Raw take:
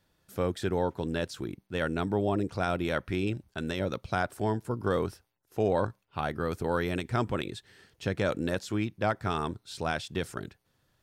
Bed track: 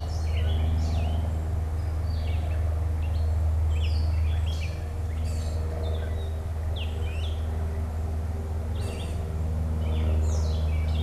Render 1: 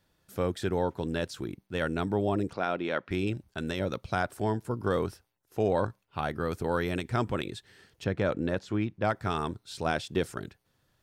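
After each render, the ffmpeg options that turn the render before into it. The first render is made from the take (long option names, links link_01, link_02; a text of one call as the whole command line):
ffmpeg -i in.wav -filter_complex "[0:a]asettb=1/sr,asplit=3[link_01][link_02][link_03];[link_01]atrim=end=2.534[link_04];[link_02]atrim=start=2.53:end=3.11,asetpts=PTS-STARTPTS,afade=type=in:duration=0.004:curve=qsin,afade=type=out:start_time=0.576:duration=0.004:curve=qsin,highpass=230,lowpass=3800[link_05];[link_03]atrim=start=3.106[link_06];[link_04][link_05]acrossfade=duration=0.004:curve1=hsin:curve2=qsin[link_07];[link_07][link_06]acrossfade=duration=0.004:curve1=qsin:curve2=hsin,asettb=1/sr,asplit=3[link_08][link_09][link_10];[link_08]atrim=end=8.044[link_11];[link_09]atrim=start=8.04:end=9.05,asetpts=PTS-STARTPTS,afade=type=in:duration=0.004:curve=qsin,afade=type=out:start_time=1.006:duration=0.004:curve=qsin,aemphasis=mode=reproduction:type=75fm[link_12];[link_10]atrim=start=9.046[link_13];[link_11][link_12]acrossfade=duration=0.004:curve1=hsin:curve2=qsin[link_14];[link_14][link_13]acrossfade=duration=0.004:curve1=qsin:curve2=hsin,asettb=1/sr,asplit=3[link_15][link_16][link_17];[link_15]atrim=end=9.854[link_18];[link_16]atrim=start=9.85:end=10.26,asetpts=PTS-STARTPTS,afade=type=in:duration=0.004:curve=qsin,afade=type=out:start_time=0.406:duration=0.004:curve=qsin,equalizer=frequency=370:width_type=o:width=1.7:gain=5.5[link_19];[link_17]atrim=start=10.256[link_20];[link_18][link_19]acrossfade=duration=0.004:curve1=hsin:curve2=qsin[link_21];[link_21][link_20]acrossfade=duration=0.004:curve1=qsin:curve2=hsin" out.wav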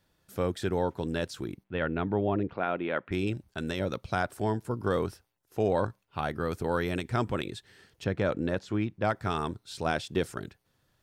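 ffmpeg -i in.wav -filter_complex "[0:a]asplit=3[link_01][link_02][link_03];[link_01]afade=type=out:start_time=1.63:duration=0.02[link_04];[link_02]lowpass=frequency=3100:width=0.5412,lowpass=frequency=3100:width=1.3066,afade=type=in:start_time=1.63:duration=0.02,afade=type=out:start_time=3.11:duration=0.02[link_05];[link_03]afade=type=in:start_time=3.11:duration=0.02[link_06];[link_04][link_05][link_06]amix=inputs=3:normalize=0" out.wav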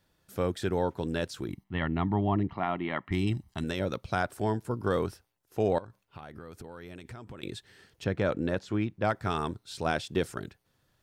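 ffmpeg -i in.wav -filter_complex "[0:a]asettb=1/sr,asplit=3[link_01][link_02][link_03];[link_01]atrim=end=1.494[link_04];[link_02]atrim=start=1.49:end=3.64,asetpts=PTS-STARTPTS,afade=type=in:duration=0.004:curve=qsin,afade=type=out:start_time=2.146:duration=0.004:curve=qsin,aecho=1:1:1:0.76,atrim=end_sample=94815[link_05];[link_03]atrim=start=3.636[link_06];[link_04][link_05]acrossfade=duration=0.004:curve1=hsin:curve2=qsin[link_07];[link_07][link_06]acrossfade=duration=0.004:curve1=qsin:curve2=hsin,asettb=1/sr,asplit=3[link_08][link_09][link_10];[link_08]atrim=end=5.784[link_11];[link_09]atrim=start=5.78:end=7.43,asetpts=PTS-STARTPTS,afade=type=in:duration=0.004:curve=qsin,afade=type=out:start_time=1.646:duration=0.004:curve=qsin,acompressor=threshold=-40dB:ratio=12:attack=3.2:release=140:knee=1:detection=peak[link_12];[link_10]atrim=start=7.426[link_13];[link_11][link_12]acrossfade=duration=0.004:curve1=hsin:curve2=qsin[link_14];[link_14][link_13]acrossfade=duration=0.004:curve1=qsin:curve2=hsin" out.wav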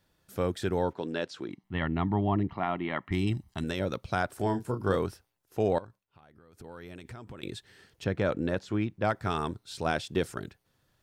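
ffmpeg -i in.wav -filter_complex "[0:a]asettb=1/sr,asplit=3[link_01][link_02][link_03];[link_01]atrim=end=0.934[link_04];[link_02]atrim=start=0.93:end=1.64,asetpts=PTS-STARTPTS,afade=type=in:duration=0.004:curve=qsin,afade=type=out:start_time=0.706:duration=0.004:curve=qsin,highpass=230,lowpass=5100[link_05];[link_03]atrim=start=1.636[link_06];[link_04][link_05]acrossfade=duration=0.004:curve1=hsin:curve2=qsin[link_07];[link_07][link_06]acrossfade=duration=0.004:curve1=qsin:curve2=hsin,asettb=1/sr,asplit=3[link_08][link_09][link_10];[link_08]atrim=end=4.364[link_11];[link_09]atrim=start=4.36:end=4.96,asetpts=PTS-STARTPTS,afade=type=in:duration=0.004:curve=qsin,afade=type=out:start_time=0.596:duration=0.004:curve=qsin,asplit=2[link_12][link_13];[link_13]adelay=31,volume=-7dB[link_14];[link_12][link_14]amix=inputs=2:normalize=0,atrim=end_sample=26460[link_15];[link_10]atrim=start=4.956[link_16];[link_11][link_15]acrossfade=duration=0.004:curve1=hsin:curve2=qsin[link_17];[link_17][link_16]acrossfade=duration=0.004:curve1=qsin:curve2=hsin,asplit=3[link_18][link_19][link_20];[link_18]atrim=end=5.99,asetpts=PTS-STARTPTS,afade=type=out:start_time=5.83:duration=0.16:silence=0.237137[link_21];[link_19]atrim=start=5.99:end=6.52,asetpts=PTS-STARTPTS,volume=-12.5dB[link_22];[link_20]atrim=start=6.52,asetpts=PTS-STARTPTS,afade=type=in:duration=0.16:silence=0.237137[link_23];[link_21][link_22][link_23]concat=n=3:v=0:a=1" out.wav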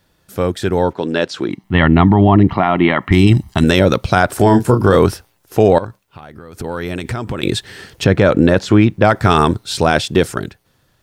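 ffmpeg -i in.wav -af "dynaudnorm=framelen=330:gausssize=9:maxgain=10.5dB,alimiter=level_in=11.5dB:limit=-1dB:release=50:level=0:latency=1" out.wav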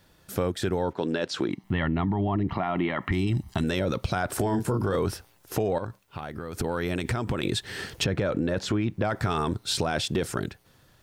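ffmpeg -i in.wav -af "alimiter=limit=-8dB:level=0:latency=1:release=13,acompressor=threshold=-26dB:ratio=3" out.wav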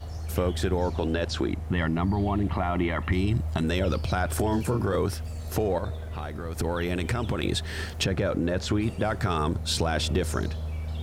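ffmpeg -i in.wav -i bed.wav -filter_complex "[1:a]volume=-6.5dB[link_01];[0:a][link_01]amix=inputs=2:normalize=0" out.wav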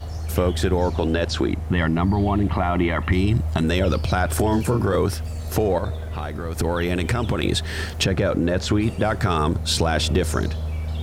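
ffmpeg -i in.wav -af "volume=5.5dB" out.wav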